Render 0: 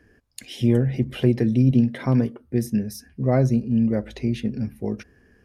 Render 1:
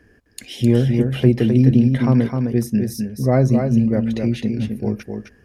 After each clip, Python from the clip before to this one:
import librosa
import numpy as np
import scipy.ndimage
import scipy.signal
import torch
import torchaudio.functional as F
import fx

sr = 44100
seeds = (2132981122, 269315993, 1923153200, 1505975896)

y = x + 10.0 ** (-5.5 / 20.0) * np.pad(x, (int(259 * sr / 1000.0), 0))[:len(x)]
y = F.gain(torch.from_numpy(y), 3.5).numpy()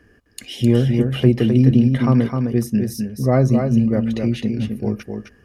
y = fx.small_body(x, sr, hz=(1200.0, 2900.0), ring_ms=40, db=9)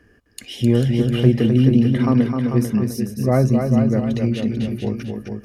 y = x + 10.0 ** (-7.0 / 20.0) * np.pad(x, (int(443 * sr / 1000.0), 0))[:len(x)]
y = F.gain(torch.from_numpy(y), -1.0).numpy()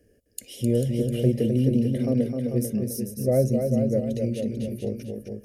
y = fx.curve_eq(x, sr, hz=(350.0, 560.0, 990.0, 2200.0, 3800.0, 10000.0), db=(0, 10, -22, -5, -3, 11))
y = F.gain(torch.from_numpy(y), -7.5).numpy()